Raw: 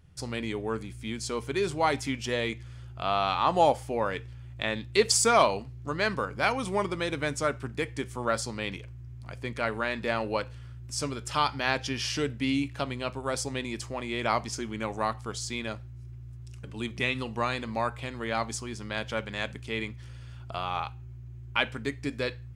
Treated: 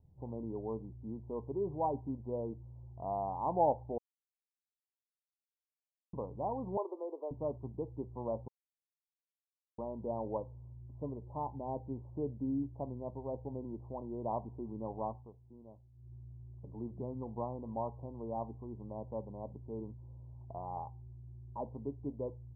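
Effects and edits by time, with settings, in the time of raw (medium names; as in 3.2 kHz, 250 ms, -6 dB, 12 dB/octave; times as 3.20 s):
3.98–6.13 s: mute
6.77–7.31 s: steep high-pass 350 Hz 48 dB/octave
8.48–9.78 s: mute
10.99–13.64 s: low-pass 1 kHz
15.09–16.15 s: dip -11.5 dB, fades 0.22 s
whole clip: steep low-pass 1 kHz 96 dB/octave; trim -7 dB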